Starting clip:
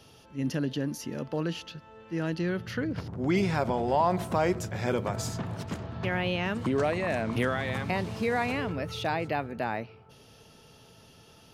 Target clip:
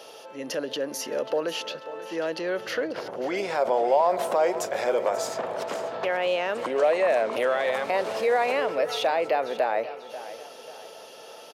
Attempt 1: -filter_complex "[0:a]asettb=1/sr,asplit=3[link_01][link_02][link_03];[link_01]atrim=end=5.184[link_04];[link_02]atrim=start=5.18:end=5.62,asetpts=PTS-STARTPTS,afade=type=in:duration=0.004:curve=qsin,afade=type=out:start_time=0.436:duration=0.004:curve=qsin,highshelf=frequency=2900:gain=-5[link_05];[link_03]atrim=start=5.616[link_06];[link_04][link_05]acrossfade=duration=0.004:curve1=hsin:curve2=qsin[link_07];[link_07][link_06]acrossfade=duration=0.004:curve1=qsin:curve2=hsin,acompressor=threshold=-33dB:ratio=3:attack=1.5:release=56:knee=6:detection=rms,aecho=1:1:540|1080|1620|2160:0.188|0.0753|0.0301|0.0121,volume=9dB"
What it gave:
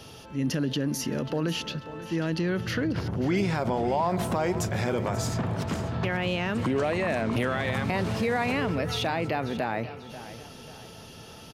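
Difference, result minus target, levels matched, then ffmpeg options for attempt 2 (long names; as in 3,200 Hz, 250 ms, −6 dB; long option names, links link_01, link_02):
500 Hz band −4.0 dB
-filter_complex "[0:a]asettb=1/sr,asplit=3[link_01][link_02][link_03];[link_01]atrim=end=5.184[link_04];[link_02]atrim=start=5.18:end=5.62,asetpts=PTS-STARTPTS,afade=type=in:duration=0.004:curve=qsin,afade=type=out:start_time=0.436:duration=0.004:curve=qsin,highshelf=frequency=2900:gain=-5[link_05];[link_03]atrim=start=5.616[link_06];[link_04][link_05]acrossfade=duration=0.004:curve1=hsin:curve2=qsin[link_07];[link_07][link_06]acrossfade=duration=0.004:curve1=qsin:curve2=hsin,acompressor=threshold=-33dB:ratio=3:attack=1.5:release=56:knee=6:detection=rms,highpass=frequency=540:width_type=q:width=2.7,aecho=1:1:540|1080|1620|2160:0.188|0.0753|0.0301|0.0121,volume=9dB"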